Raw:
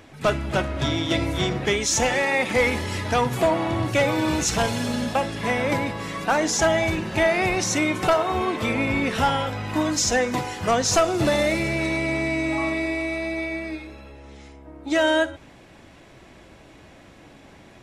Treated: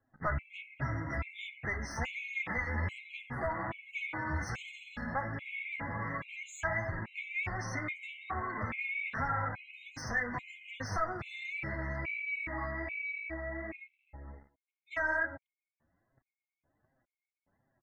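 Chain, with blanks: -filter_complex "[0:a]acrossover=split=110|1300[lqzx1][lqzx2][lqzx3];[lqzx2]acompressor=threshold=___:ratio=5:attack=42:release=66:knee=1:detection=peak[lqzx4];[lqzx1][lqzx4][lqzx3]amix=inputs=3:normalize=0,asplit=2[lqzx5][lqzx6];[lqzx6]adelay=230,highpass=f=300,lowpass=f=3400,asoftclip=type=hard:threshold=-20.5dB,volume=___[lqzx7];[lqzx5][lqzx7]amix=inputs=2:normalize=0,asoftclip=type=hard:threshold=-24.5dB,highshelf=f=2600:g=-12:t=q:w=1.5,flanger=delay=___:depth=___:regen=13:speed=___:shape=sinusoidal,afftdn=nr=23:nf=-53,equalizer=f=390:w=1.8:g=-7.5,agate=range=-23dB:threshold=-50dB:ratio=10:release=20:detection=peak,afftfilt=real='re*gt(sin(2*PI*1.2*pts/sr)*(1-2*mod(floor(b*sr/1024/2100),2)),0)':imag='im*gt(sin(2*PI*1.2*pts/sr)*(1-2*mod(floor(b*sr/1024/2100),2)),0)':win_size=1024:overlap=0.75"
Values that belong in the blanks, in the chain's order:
-38dB, -28dB, 7.4, 6.4, 1.3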